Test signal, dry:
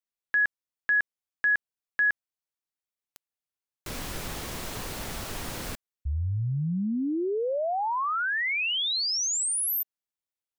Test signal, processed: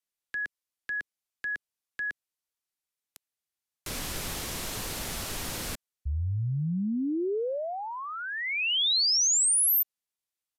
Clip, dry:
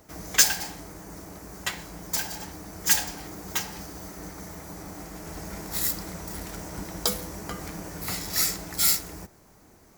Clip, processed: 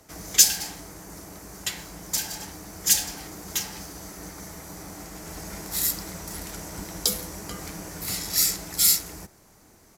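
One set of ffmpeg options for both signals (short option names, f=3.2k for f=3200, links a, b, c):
-filter_complex "[0:a]highshelf=f=2.3k:g=5.5,acrossover=split=280|520|2500[a][b][c][d];[c]acompressor=threshold=-37dB:ratio=6:attack=0.26:release=36:knee=1[e];[a][b][e][d]amix=inputs=4:normalize=0,aresample=32000,aresample=44100,volume=-1dB"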